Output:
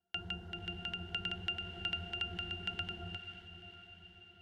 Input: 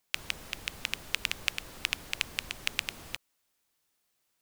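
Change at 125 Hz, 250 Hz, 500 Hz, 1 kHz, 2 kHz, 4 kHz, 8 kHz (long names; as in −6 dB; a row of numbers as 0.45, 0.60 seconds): +6.0 dB, +4.0 dB, +0.5 dB, −0.5 dB, −5.5 dB, −4.0 dB, below −25 dB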